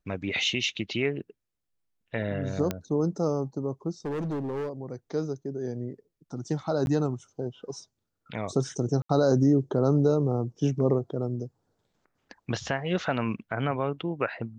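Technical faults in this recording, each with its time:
2.71 s: pop -14 dBFS
4.05–4.70 s: clipped -28 dBFS
6.86–6.87 s: dropout 11 ms
9.02–9.09 s: dropout 74 ms

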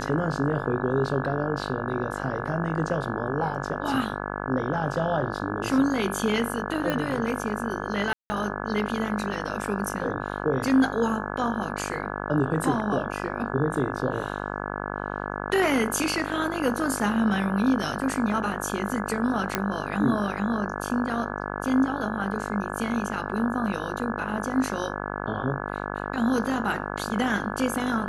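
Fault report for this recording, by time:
buzz 50 Hz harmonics 34 -32 dBFS
6.90 s: pop -14 dBFS
8.13–8.30 s: dropout 170 ms
19.55 s: pop -7 dBFS

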